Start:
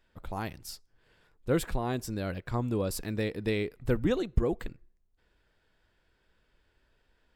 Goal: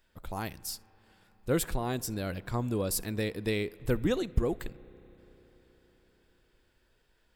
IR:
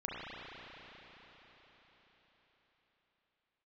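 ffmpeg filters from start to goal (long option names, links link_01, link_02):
-filter_complex "[0:a]highshelf=frequency=5600:gain=10,asplit=2[link_01][link_02];[1:a]atrim=start_sample=2205,adelay=66[link_03];[link_02][link_03]afir=irnorm=-1:irlink=0,volume=-25dB[link_04];[link_01][link_04]amix=inputs=2:normalize=0,volume=-1dB"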